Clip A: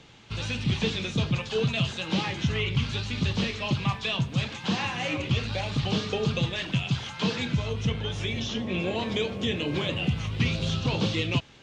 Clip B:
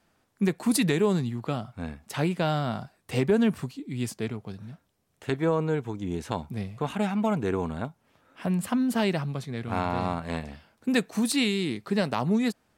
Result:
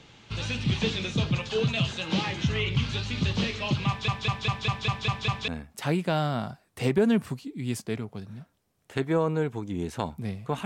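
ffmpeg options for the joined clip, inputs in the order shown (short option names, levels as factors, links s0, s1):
-filter_complex "[0:a]apad=whole_dur=10.65,atrim=end=10.65,asplit=8[s0][s1][s2][s3][s4][s5][s6][s7];[s0]atrim=end=4.082[s8];[s1]atrim=start=3.878:end=4.082[s9];[s2]atrim=start=3.878:end=4.082[s10];[s3]atrim=start=3.878:end=4.082[s11];[s4]atrim=start=3.878:end=4.082[s12];[s5]atrim=start=3.878:end=4.082[s13];[s6]atrim=start=3.878:end=4.082[s14];[s7]atrim=start=3.878:end=4.082[s15];[1:a]atrim=start=1.798:end=6.97[s16];[s8][s9]acrossfade=d=0.004:c1=hsin:c2=hsin[s17];[s17][s10]acrossfade=d=0.004:c1=hsin:c2=hsin[s18];[s18][s11]acrossfade=d=0.004:c1=hsin:c2=hsin[s19];[s19][s12]acrossfade=d=0.004:c1=hsin:c2=hsin[s20];[s20][s13]acrossfade=d=0.004:c1=hsin:c2=hsin[s21];[s21][s14]acrossfade=d=0.004:c1=hsin:c2=hsin[s22];[s22][s15]acrossfade=d=0.004:c1=hsin:c2=hsin[s23];[s23][s16]acrossfade=d=0.004:c1=hsin:c2=hsin"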